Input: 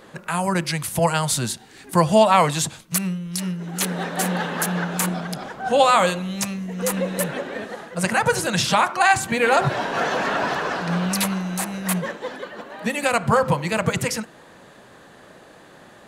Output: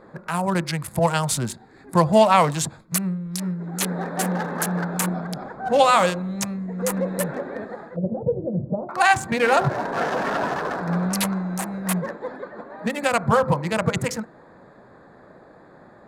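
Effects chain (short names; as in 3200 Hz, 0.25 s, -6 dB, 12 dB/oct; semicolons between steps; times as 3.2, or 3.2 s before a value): Wiener smoothing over 15 samples; 7.96–8.89 elliptic low-pass 590 Hz, stop band 80 dB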